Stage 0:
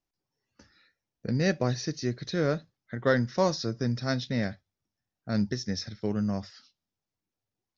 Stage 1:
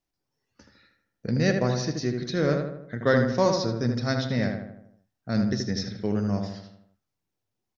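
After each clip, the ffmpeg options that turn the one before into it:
ffmpeg -i in.wav -filter_complex "[0:a]asplit=2[link_01][link_02];[link_02]adelay=78,lowpass=frequency=2100:poles=1,volume=-4dB,asplit=2[link_03][link_04];[link_04]adelay=78,lowpass=frequency=2100:poles=1,volume=0.54,asplit=2[link_05][link_06];[link_06]adelay=78,lowpass=frequency=2100:poles=1,volume=0.54,asplit=2[link_07][link_08];[link_08]adelay=78,lowpass=frequency=2100:poles=1,volume=0.54,asplit=2[link_09][link_10];[link_10]adelay=78,lowpass=frequency=2100:poles=1,volume=0.54,asplit=2[link_11][link_12];[link_12]adelay=78,lowpass=frequency=2100:poles=1,volume=0.54,asplit=2[link_13][link_14];[link_14]adelay=78,lowpass=frequency=2100:poles=1,volume=0.54[link_15];[link_01][link_03][link_05][link_07][link_09][link_11][link_13][link_15]amix=inputs=8:normalize=0,volume=2dB" out.wav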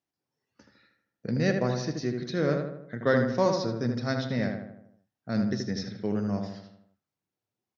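ffmpeg -i in.wav -af "highpass=110,highshelf=frequency=4900:gain=-6.5,volume=-2dB" out.wav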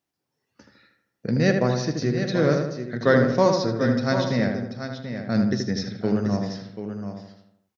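ffmpeg -i in.wav -af "aecho=1:1:736:0.355,volume=5.5dB" out.wav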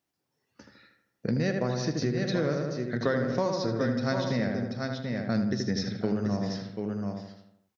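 ffmpeg -i in.wav -af "acompressor=threshold=-24dB:ratio=6" out.wav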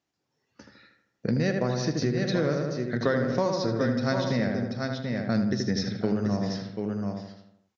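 ffmpeg -i in.wav -af "aresample=16000,aresample=44100,volume=2dB" out.wav

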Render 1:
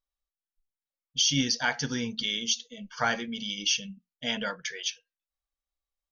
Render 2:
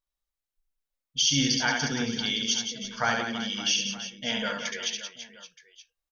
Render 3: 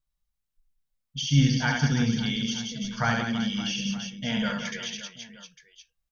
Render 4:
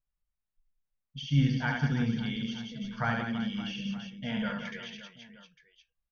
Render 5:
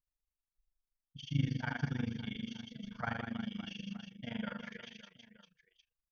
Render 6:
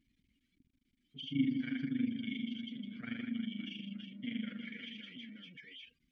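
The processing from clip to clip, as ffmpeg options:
ffmpeg -i in.wav -af "aecho=1:1:70|175|332.5|568.8|923.1:0.631|0.398|0.251|0.158|0.1" out.wav
ffmpeg -i in.wav -filter_complex "[0:a]acrossover=split=2500[link_01][link_02];[link_02]acompressor=threshold=-33dB:ratio=4:attack=1:release=60[link_03];[link_01][link_03]amix=inputs=2:normalize=0,lowshelf=frequency=240:width_type=q:width=1.5:gain=10" out.wav
ffmpeg -i in.wav -af "lowpass=2700,volume=-4.5dB" out.wav
ffmpeg -i in.wav -af "tremolo=f=25:d=0.919,volume=-4dB" out.wav
ffmpeg -i in.wav -filter_complex "[0:a]aeval=exprs='val(0)+0.5*0.00794*sgn(val(0))':channel_layout=same,afftdn=noise_reduction=21:noise_floor=-52,asplit=3[link_01][link_02][link_03];[link_01]bandpass=frequency=270:width_type=q:width=8,volume=0dB[link_04];[link_02]bandpass=frequency=2290:width_type=q:width=8,volume=-6dB[link_05];[link_03]bandpass=frequency=3010:width_type=q:width=8,volume=-9dB[link_06];[link_04][link_05][link_06]amix=inputs=3:normalize=0,volume=9dB" out.wav

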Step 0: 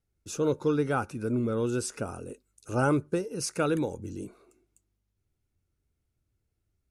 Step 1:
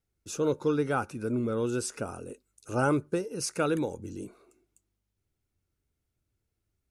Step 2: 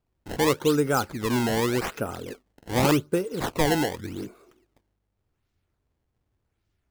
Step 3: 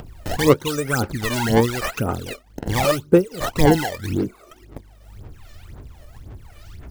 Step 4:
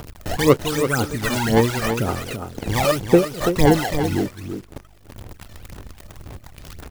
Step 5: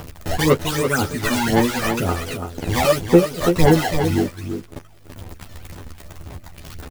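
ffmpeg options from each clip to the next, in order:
ffmpeg -i in.wav -af "lowshelf=frequency=170:gain=-4" out.wav
ffmpeg -i in.wav -af "acrusher=samples=21:mix=1:aa=0.000001:lfo=1:lforange=33.6:lforate=0.86,volume=5dB" out.wav
ffmpeg -i in.wav -af "aphaser=in_gain=1:out_gain=1:delay=1.7:decay=0.79:speed=1.9:type=sinusoidal,acompressor=mode=upward:threshold=-15dB:ratio=2.5,volume=-1.5dB" out.wav
ffmpeg -i in.wav -af "acrusher=bits=7:dc=4:mix=0:aa=0.000001,aecho=1:1:334:0.398" out.wav
ffmpeg -i in.wav -filter_complex "[0:a]asoftclip=type=tanh:threshold=-5.5dB,asplit=2[link_01][link_02];[link_02]adelay=12,volume=-2.5dB[link_03];[link_01][link_03]amix=inputs=2:normalize=0" out.wav

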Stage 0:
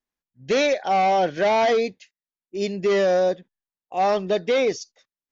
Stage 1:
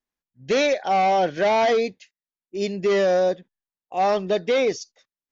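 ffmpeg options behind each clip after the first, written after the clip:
ffmpeg -i in.wav -af anull out.wav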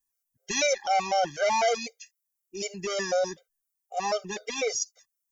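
ffmpeg -i in.wav -af "aexciter=amount=5.3:drive=5.1:freq=5500,equalizer=frequency=260:width=0.62:gain=-9.5,afftfilt=real='re*gt(sin(2*PI*4*pts/sr)*(1-2*mod(floor(b*sr/1024/400),2)),0)':imag='im*gt(sin(2*PI*4*pts/sr)*(1-2*mod(floor(b*sr/1024/400),2)),0)':win_size=1024:overlap=0.75" out.wav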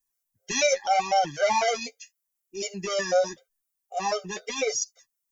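ffmpeg -i in.wav -af "flanger=delay=6.4:depth=5.5:regen=34:speed=0.83:shape=sinusoidal,volume=5dB" out.wav

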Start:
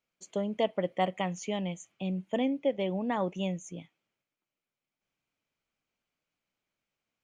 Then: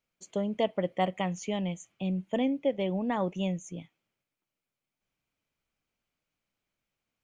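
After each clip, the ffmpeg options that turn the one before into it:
ffmpeg -i in.wav -af "lowshelf=frequency=110:gain=8.5" out.wav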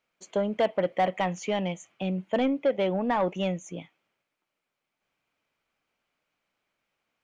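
ffmpeg -i in.wav -filter_complex "[0:a]asplit=2[link_01][link_02];[link_02]highpass=frequency=720:poles=1,volume=17dB,asoftclip=type=tanh:threshold=-13.5dB[link_03];[link_01][link_03]amix=inputs=2:normalize=0,lowpass=frequency=1800:poles=1,volume=-6dB" out.wav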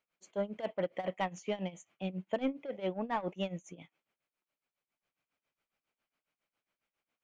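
ffmpeg -i in.wav -af "tremolo=f=7.3:d=0.87,volume=-5dB" out.wav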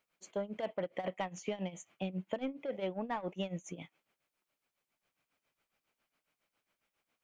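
ffmpeg -i in.wav -af "acompressor=threshold=-38dB:ratio=12,volume=5dB" out.wav

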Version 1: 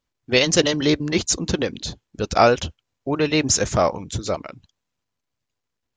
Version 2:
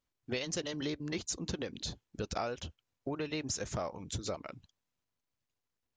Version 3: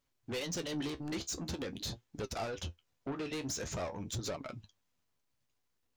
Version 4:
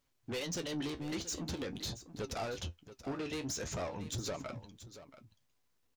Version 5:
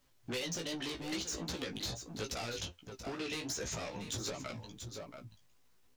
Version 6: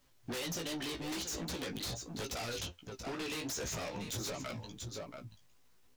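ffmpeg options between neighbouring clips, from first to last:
ffmpeg -i in.wav -af "acompressor=threshold=-27dB:ratio=6,volume=-7dB" out.wav
ffmpeg -i in.wav -af "asoftclip=type=tanh:threshold=-38.5dB,flanger=delay=6.8:depth=9.4:regen=51:speed=0.46:shape=triangular,volume=8.5dB" out.wav
ffmpeg -i in.wav -filter_complex "[0:a]asplit=2[link_01][link_02];[link_02]alimiter=level_in=18dB:limit=-24dB:level=0:latency=1,volume=-18dB,volume=-2dB[link_03];[link_01][link_03]amix=inputs=2:normalize=0,aecho=1:1:680:0.2,volume=-2.5dB" out.wav
ffmpeg -i in.wav -filter_complex "[0:a]acrossover=split=420|2100[link_01][link_02][link_03];[link_01]acompressor=threshold=-52dB:ratio=4[link_04];[link_02]acompressor=threshold=-53dB:ratio=4[link_05];[link_03]acompressor=threshold=-46dB:ratio=4[link_06];[link_04][link_05][link_06]amix=inputs=3:normalize=0,flanger=delay=15.5:depth=3.1:speed=2.5,volume=10.5dB" out.wav
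ffmpeg -i in.wav -af "aeval=exprs='0.0168*(abs(mod(val(0)/0.0168+3,4)-2)-1)':channel_layout=same,volume=2dB" out.wav

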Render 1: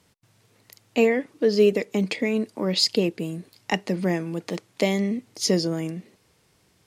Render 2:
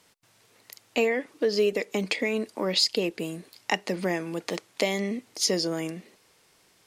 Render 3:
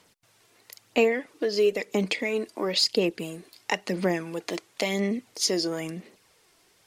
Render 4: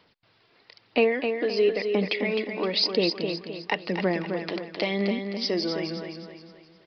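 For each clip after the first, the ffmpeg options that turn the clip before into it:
ffmpeg -i in.wav -af "equalizer=frequency=86:width=0.38:gain=-14,acompressor=threshold=-27dB:ratio=2,volume=3.5dB" out.wav
ffmpeg -i in.wav -af "aphaser=in_gain=1:out_gain=1:delay=3:decay=0.39:speed=0.99:type=sinusoidal,volume=-1dB" out.wav
ffmpeg -i in.wav -filter_complex "[0:a]asplit=2[link_01][link_02];[link_02]aecho=0:1:260|520|780|1040|1300:0.473|0.194|0.0795|0.0326|0.0134[link_03];[link_01][link_03]amix=inputs=2:normalize=0,aresample=11025,aresample=44100" out.wav

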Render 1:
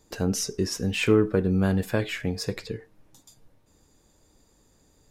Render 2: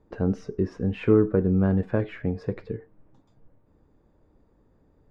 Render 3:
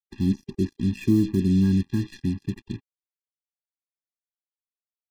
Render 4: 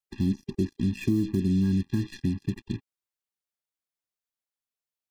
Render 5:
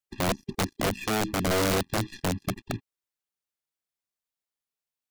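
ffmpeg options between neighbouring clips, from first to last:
ffmpeg -i in.wav -af "lowpass=1200,equalizer=frequency=800:width_type=o:width=0.77:gain=-2.5,volume=1.5dB" out.wav
ffmpeg -i in.wav -af "acrusher=bits=5:mix=0:aa=0.5,equalizer=frequency=250:width_type=o:width=1:gain=6,equalizer=frequency=500:width_type=o:width=1:gain=-6,equalizer=frequency=1000:width_type=o:width=1:gain=-11,equalizer=frequency=4000:width_type=o:width=1:gain=6,afftfilt=real='re*eq(mod(floor(b*sr/1024/400),2),0)':imag='im*eq(mod(floor(b*sr/1024/400),2),0)':win_size=1024:overlap=0.75" out.wav
ffmpeg -i in.wav -af "acompressor=threshold=-25dB:ratio=2.5,volume=1.5dB" out.wav
ffmpeg -i in.wav -af "aeval=exprs='(mod(10.6*val(0)+1,2)-1)/10.6':channel_layout=same" out.wav

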